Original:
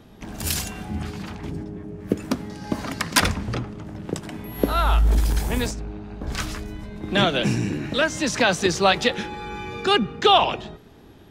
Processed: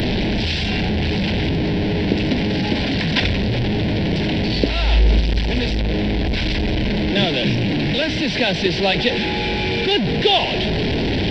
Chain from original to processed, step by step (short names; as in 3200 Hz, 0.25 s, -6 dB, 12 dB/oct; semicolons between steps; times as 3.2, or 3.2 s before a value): delta modulation 32 kbps, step -15 dBFS; fixed phaser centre 2900 Hz, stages 4; gain +3 dB